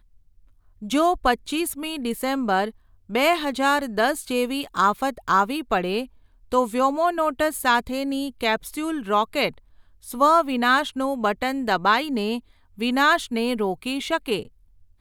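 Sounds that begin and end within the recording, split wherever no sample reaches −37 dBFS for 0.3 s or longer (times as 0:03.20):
0:00.82–0:02.71
0:03.10–0:06.06
0:06.52–0:09.58
0:10.04–0:12.39
0:12.78–0:14.47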